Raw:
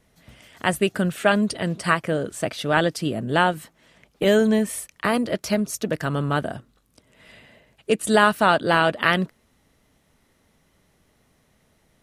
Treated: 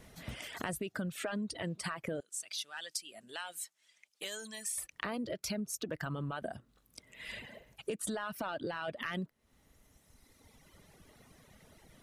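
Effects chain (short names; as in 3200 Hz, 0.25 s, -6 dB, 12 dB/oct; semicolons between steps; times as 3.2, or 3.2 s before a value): soft clip -6.5 dBFS, distortion -21 dB; limiter -18.5 dBFS, peak gain reduction 11 dB; 2.2–4.78 band-pass 7600 Hz, Q 0.98; reverb removal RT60 2 s; compressor 6:1, threshold -43 dBFS, peak gain reduction 19 dB; gain +6.5 dB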